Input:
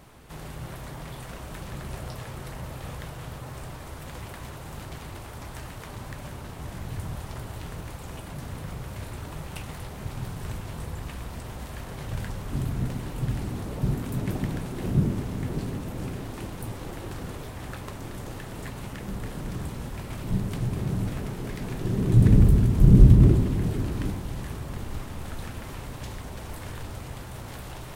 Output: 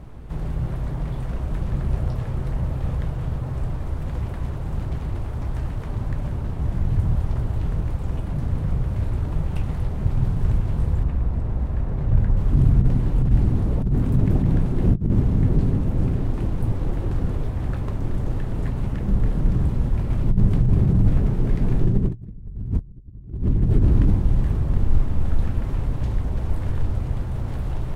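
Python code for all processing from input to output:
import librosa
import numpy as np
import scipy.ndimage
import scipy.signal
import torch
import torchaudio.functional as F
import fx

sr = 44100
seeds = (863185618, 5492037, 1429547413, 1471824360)

y = fx.chain(x, sr, fx.high_shelf(hz=2700.0, db=-10.5),
    fx.notch(hz=3100.0, q=23.0), at=(11.03, 12.37))
y = fx.over_compress(y, sr, threshold_db=-27.0, ratio=-0.5)
y = fx.tilt_eq(y, sr, slope=-3.5)
y = y * librosa.db_to_amplitude(-2.5)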